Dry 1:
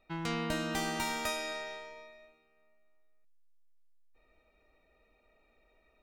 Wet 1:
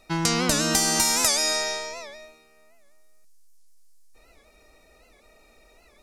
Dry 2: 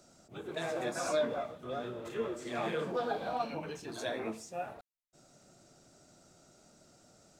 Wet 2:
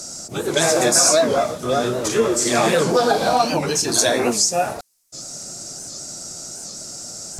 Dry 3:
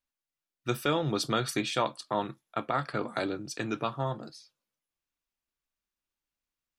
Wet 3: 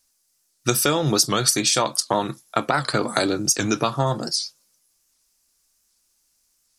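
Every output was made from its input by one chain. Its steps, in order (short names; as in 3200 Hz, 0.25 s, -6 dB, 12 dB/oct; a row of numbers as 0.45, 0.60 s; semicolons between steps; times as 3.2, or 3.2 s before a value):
band shelf 7500 Hz +15 dB; compressor 4:1, threshold -31 dBFS; record warp 78 rpm, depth 160 cents; normalise peaks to -2 dBFS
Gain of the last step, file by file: +12.0, +19.0, +14.0 dB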